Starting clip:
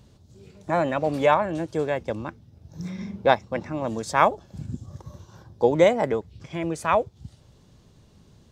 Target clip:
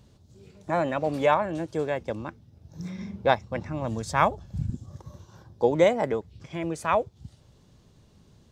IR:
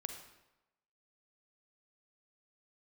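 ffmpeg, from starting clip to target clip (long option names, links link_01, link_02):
-filter_complex "[0:a]asettb=1/sr,asplit=3[link_01][link_02][link_03];[link_01]atrim=end=2.874[link_04];[link_02]atrim=start=2.87:end=4.7,asetpts=PTS-STARTPTS,afade=type=in:duration=0.004:curve=qsin,afade=type=out:start_time=1.826:duration=0.004:curve=qsin,asubboost=boost=8:cutoff=160[link_05];[link_03]atrim=start=4.696[link_06];[link_04][link_05]acrossfade=duration=0.004:curve1=hsin:curve2=qsin[link_07];[link_07][link_06]acrossfade=duration=0.004:curve1=qsin:curve2=hsin,volume=-2.5dB"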